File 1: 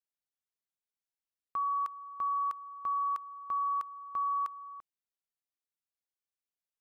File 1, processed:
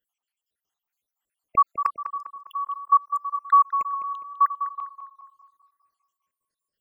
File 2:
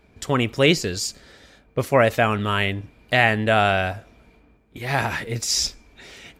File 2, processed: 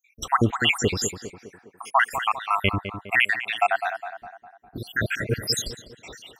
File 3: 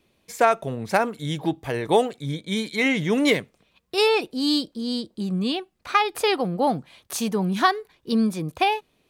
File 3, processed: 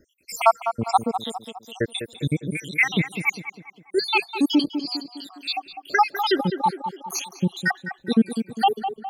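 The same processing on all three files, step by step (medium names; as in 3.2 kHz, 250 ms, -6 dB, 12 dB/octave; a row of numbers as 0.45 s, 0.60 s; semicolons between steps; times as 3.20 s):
random holes in the spectrogram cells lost 80%; gain riding within 4 dB 2 s; on a send: tape echo 203 ms, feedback 55%, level -7.5 dB, low-pass 1.7 kHz; on the sum: normalise loudness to -24 LUFS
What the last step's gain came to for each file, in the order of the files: +17.0 dB, +5.0 dB, +7.0 dB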